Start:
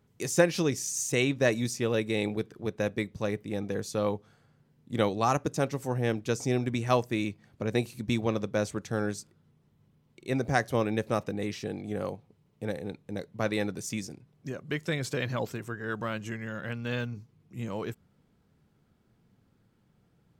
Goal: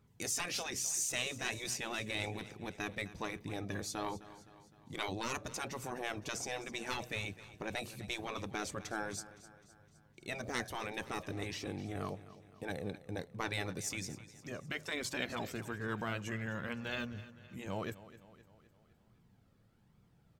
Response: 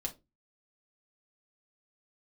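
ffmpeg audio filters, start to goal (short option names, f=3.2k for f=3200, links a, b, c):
-filter_complex "[0:a]asoftclip=type=tanh:threshold=-16dB,flanger=delay=0.8:depth=1:regen=47:speed=1.2:shape=triangular,afftfilt=real='re*lt(hypot(re,im),0.0708)':imag='im*lt(hypot(re,im),0.0708)':win_size=1024:overlap=0.75,asplit=2[a][b];[b]aecho=0:1:257|514|771|1028|1285:0.15|0.0793|0.042|0.0223|0.0118[c];[a][c]amix=inputs=2:normalize=0,volume=2.5dB"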